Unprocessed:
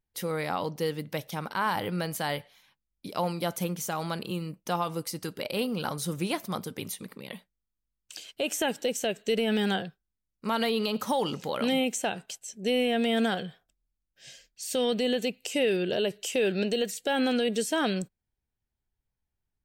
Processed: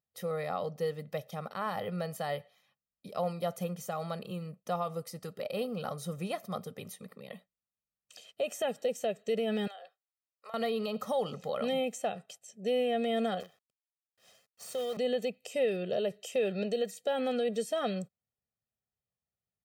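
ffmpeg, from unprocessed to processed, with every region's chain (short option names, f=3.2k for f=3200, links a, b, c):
-filter_complex "[0:a]asettb=1/sr,asplit=3[a][b][c];[a]atrim=end=9.674[d];[b]atrim=start=9.67:end=10.54,asetpts=PTS-STARTPTS,afade=t=in:d=0.004:c=qsin,afade=t=out:st=0.866:d=0.004:c=qsin,highpass=f=590:w=0.5412,highpass=f=590:w=1.3066,acompressor=threshold=-38dB:ratio=8:attack=3.2:release=140:knee=1:detection=peak[e];[c]atrim=start=10.536[f];[d][e]acrossfade=d=0.004:c1=hsin:c2=qsin[g];[g][f]acrossfade=d=0.004:c1=qsin:c2=hsin,asettb=1/sr,asplit=3[h][i][j];[h]atrim=end=13.404[k];[i]atrim=start=13.4:end=14.97,asetpts=PTS-STARTPTS,afade=t=in:d=0.004:c=qsin,afade=t=out:st=1.566:d=0.004:c=qsin,highpass=f=260:w=0.5412,highpass=f=260:w=1.3066,acompressor=threshold=-31dB:ratio=2:attack=3.2:release=140:knee=1:detection=peak,acrusher=bits=7:dc=4:mix=0:aa=0.000001[l];[j]atrim=start=14.966[m];[k][l]acrossfade=d=0.004:c1=hsin:c2=qsin[n];[n][m]acrossfade=d=0.004:c1=qsin:c2=hsin,highpass=170,tiltshelf=f=1.2k:g=5,aecho=1:1:1.6:0.78,volume=-8dB"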